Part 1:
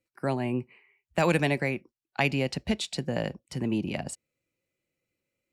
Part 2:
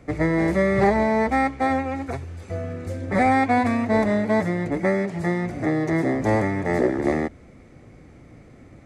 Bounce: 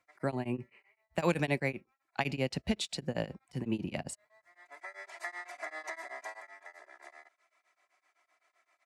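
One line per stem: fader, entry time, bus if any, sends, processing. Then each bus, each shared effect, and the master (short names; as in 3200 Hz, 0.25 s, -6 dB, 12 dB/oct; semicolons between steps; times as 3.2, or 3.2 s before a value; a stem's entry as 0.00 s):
-2.5 dB, 0.00 s, no send, dry
1.75 s -19.5 dB -> 2.51 s -12 dB -> 4.65 s -12 dB -> 5.2 s -2.5 dB -> 6.13 s -2.5 dB -> 6.61 s -13 dB, 0.00 s, no send, HPF 830 Hz 24 dB/oct; comb 3 ms, depth 92%; compressor 12:1, threshold -33 dBFS, peak gain reduction 15.5 dB; auto duck -20 dB, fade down 1.00 s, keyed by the first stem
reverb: off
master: beating tremolo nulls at 7.8 Hz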